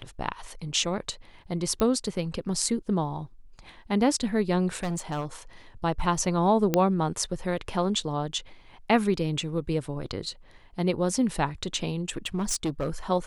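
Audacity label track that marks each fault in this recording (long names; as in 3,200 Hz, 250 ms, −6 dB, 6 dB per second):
1.800000	1.800000	click −15 dBFS
4.750000	5.250000	clipping −25.5 dBFS
6.740000	6.740000	click −8 dBFS
12.170000	12.900000	clipping −23.5 dBFS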